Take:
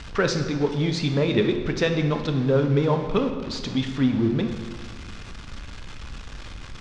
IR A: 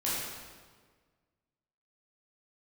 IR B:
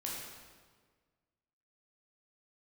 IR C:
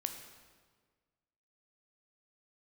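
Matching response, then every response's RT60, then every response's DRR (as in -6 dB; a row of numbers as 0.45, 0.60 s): C; 1.6, 1.6, 1.6 s; -9.0, -4.5, 5.5 dB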